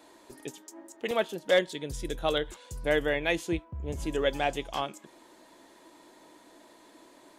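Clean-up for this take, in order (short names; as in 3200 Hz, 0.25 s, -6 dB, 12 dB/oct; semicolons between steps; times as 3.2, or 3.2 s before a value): clip repair -14.5 dBFS; interpolate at 1.11/1.67, 2 ms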